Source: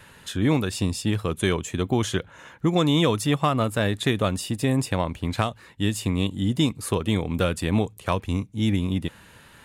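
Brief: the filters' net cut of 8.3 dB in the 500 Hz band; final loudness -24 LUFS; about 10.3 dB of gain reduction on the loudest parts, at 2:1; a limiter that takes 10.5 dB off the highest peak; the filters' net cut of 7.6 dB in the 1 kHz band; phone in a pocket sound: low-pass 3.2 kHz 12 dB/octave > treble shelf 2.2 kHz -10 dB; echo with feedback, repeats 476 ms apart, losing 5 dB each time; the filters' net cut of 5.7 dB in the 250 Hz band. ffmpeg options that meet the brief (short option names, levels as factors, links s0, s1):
-af "equalizer=f=250:t=o:g=-5.5,equalizer=f=500:t=o:g=-7,equalizer=f=1000:t=o:g=-5,acompressor=threshold=0.00891:ratio=2,alimiter=level_in=2.24:limit=0.0631:level=0:latency=1,volume=0.447,lowpass=3200,highshelf=f=2200:g=-10,aecho=1:1:476|952|1428|1904|2380|2856|3332:0.562|0.315|0.176|0.0988|0.0553|0.031|0.0173,volume=7.5"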